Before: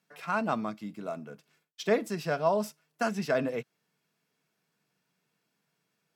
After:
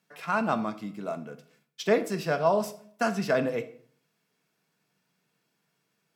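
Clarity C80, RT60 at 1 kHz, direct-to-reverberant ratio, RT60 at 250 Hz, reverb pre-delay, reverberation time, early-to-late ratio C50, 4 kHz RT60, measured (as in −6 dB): 18.0 dB, 0.50 s, 11.0 dB, 0.60 s, 18 ms, 0.55 s, 14.5 dB, 0.40 s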